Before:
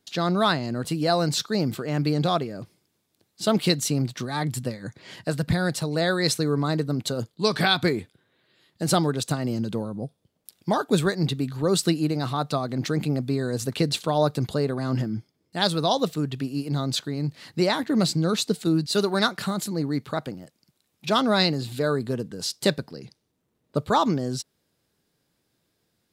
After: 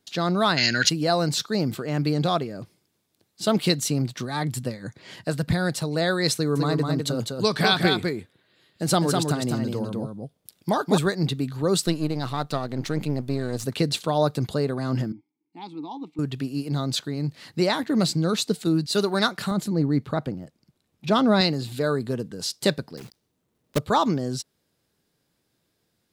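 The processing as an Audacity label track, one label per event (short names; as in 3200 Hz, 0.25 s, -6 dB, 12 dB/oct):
0.580000	0.890000	spectral gain 1400–7100 Hz +22 dB
6.350000	10.980000	echo 0.203 s -4 dB
11.860000	13.640000	half-wave gain negative side -7 dB
15.120000	16.190000	vowel filter u
19.510000	21.410000	tilt -2 dB/oct
22.970000	23.790000	block floating point 3-bit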